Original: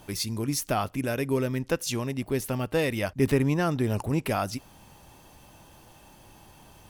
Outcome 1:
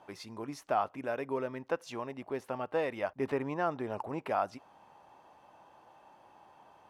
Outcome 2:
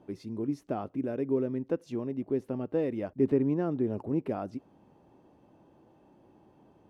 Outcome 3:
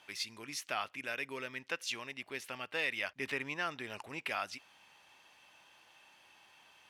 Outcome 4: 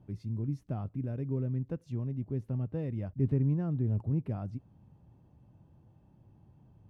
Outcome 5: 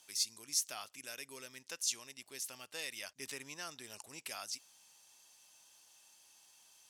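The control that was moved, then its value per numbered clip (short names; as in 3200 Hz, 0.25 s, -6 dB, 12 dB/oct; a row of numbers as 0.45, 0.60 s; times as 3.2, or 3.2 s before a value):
band-pass, frequency: 860, 330, 2400, 120, 6600 Hz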